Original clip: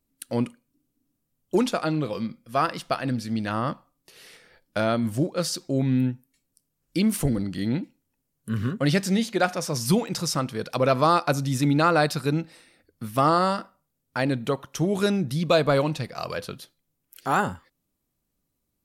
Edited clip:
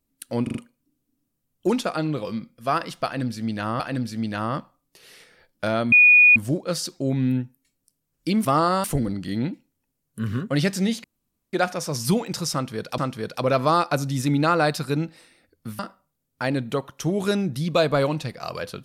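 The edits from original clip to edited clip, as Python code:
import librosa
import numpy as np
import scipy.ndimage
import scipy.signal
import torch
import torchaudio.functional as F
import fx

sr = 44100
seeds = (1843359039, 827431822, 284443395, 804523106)

y = fx.edit(x, sr, fx.stutter(start_s=0.43, slice_s=0.04, count=4),
    fx.repeat(start_s=2.93, length_s=0.75, count=2),
    fx.insert_tone(at_s=5.05, length_s=0.44, hz=2460.0, db=-9.5),
    fx.insert_room_tone(at_s=9.34, length_s=0.49),
    fx.repeat(start_s=10.34, length_s=0.45, count=2),
    fx.move(start_s=13.15, length_s=0.39, to_s=7.14), tone=tone)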